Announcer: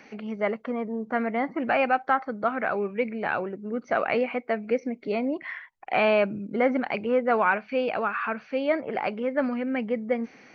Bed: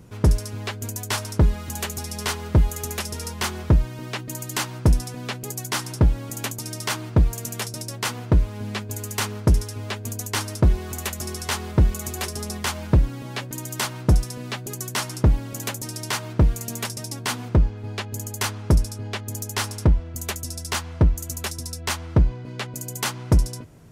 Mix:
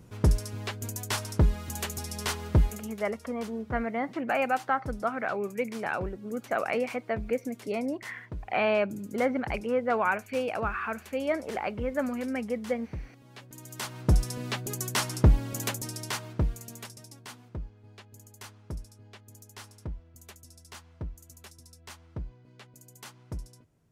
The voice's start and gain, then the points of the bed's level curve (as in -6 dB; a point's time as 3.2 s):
2.60 s, -4.0 dB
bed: 2.64 s -5 dB
2.98 s -21.5 dB
13.16 s -21.5 dB
14.3 s -2 dB
15.64 s -2 dB
17.47 s -20.5 dB